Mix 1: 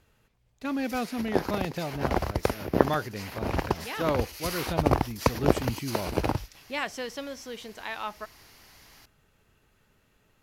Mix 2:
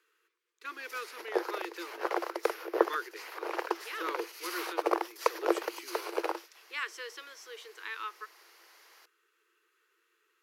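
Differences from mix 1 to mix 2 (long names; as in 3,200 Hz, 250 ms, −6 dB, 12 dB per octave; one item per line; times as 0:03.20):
speech: add Butterworth band-reject 680 Hz, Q 0.97
master: add Chebyshev high-pass with heavy ripple 330 Hz, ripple 6 dB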